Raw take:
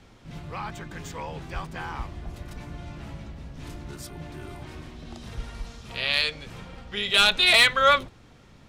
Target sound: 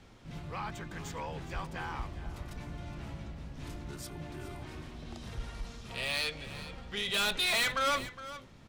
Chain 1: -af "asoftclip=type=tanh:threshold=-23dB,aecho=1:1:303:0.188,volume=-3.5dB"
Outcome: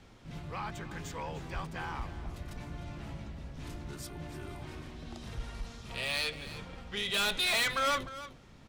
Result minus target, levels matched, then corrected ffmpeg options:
echo 111 ms early
-af "asoftclip=type=tanh:threshold=-23dB,aecho=1:1:414:0.188,volume=-3.5dB"

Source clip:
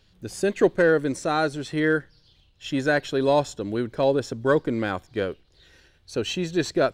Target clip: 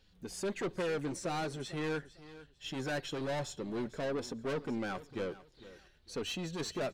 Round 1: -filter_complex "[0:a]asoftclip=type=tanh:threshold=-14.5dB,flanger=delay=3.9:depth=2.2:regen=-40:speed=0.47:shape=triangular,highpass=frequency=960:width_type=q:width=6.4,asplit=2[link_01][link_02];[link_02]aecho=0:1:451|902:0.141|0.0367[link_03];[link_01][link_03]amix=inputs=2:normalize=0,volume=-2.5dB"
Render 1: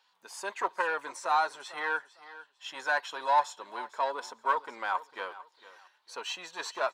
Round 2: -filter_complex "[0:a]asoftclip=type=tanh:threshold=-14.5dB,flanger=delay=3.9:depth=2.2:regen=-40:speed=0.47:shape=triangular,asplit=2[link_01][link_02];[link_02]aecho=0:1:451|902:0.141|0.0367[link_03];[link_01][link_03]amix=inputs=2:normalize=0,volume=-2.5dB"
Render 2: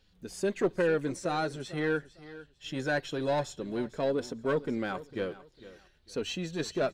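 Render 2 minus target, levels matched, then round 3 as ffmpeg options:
soft clipping: distortion −10 dB
-filter_complex "[0:a]asoftclip=type=tanh:threshold=-26dB,flanger=delay=3.9:depth=2.2:regen=-40:speed=0.47:shape=triangular,asplit=2[link_01][link_02];[link_02]aecho=0:1:451|902:0.141|0.0367[link_03];[link_01][link_03]amix=inputs=2:normalize=0,volume=-2.5dB"

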